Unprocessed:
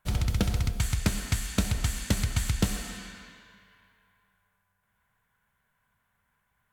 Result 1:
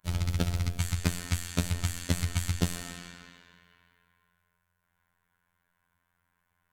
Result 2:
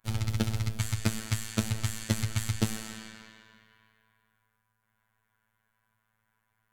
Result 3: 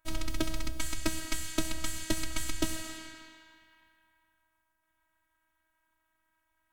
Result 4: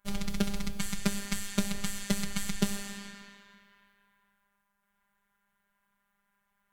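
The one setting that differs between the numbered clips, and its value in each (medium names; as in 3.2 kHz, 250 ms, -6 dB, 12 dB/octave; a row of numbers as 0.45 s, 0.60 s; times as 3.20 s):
robot voice, frequency: 87 Hz, 110 Hz, 320 Hz, 200 Hz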